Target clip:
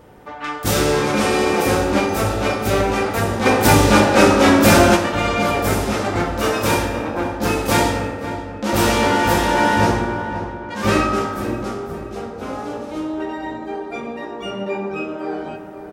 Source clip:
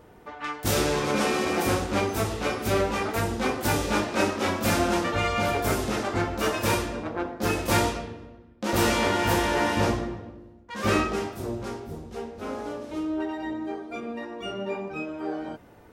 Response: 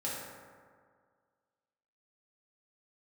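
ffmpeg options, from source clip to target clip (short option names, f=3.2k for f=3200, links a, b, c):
-filter_complex "[0:a]asplit=2[a][b];[b]adelay=528,lowpass=f=2k:p=1,volume=-11dB,asplit=2[c][d];[d]adelay=528,lowpass=f=2k:p=1,volume=0.51,asplit=2[e][f];[f]adelay=528,lowpass=f=2k:p=1,volume=0.51,asplit=2[g][h];[h]adelay=528,lowpass=f=2k:p=1,volume=0.51,asplit=2[i][j];[j]adelay=528,lowpass=f=2k:p=1,volume=0.51[k];[a][c][e][g][i][k]amix=inputs=6:normalize=0,asplit=2[l][m];[1:a]atrim=start_sample=2205[n];[m][n]afir=irnorm=-1:irlink=0,volume=-4.5dB[o];[l][o]amix=inputs=2:normalize=0,asplit=3[p][q][r];[p]afade=t=out:st=3.45:d=0.02[s];[q]acontrast=59,afade=t=in:st=3.45:d=0.02,afade=t=out:st=4.95:d=0.02[t];[r]afade=t=in:st=4.95:d=0.02[u];[s][t][u]amix=inputs=3:normalize=0,volume=2.5dB"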